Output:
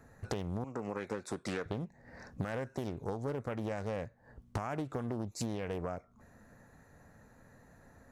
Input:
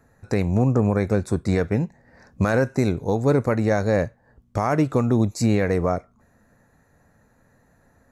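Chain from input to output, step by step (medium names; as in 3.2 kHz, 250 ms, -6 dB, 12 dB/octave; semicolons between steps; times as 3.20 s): 0.64–1.66 s: frequency weighting A; compression 16:1, threshold -33 dBFS, peak gain reduction 19 dB; loudspeaker Doppler distortion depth 0.93 ms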